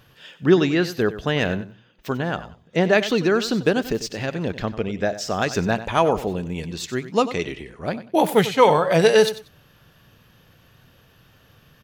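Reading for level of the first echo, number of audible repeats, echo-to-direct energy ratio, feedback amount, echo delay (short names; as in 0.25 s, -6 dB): -14.0 dB, 2, -14.0 dB, 20%, 94 ms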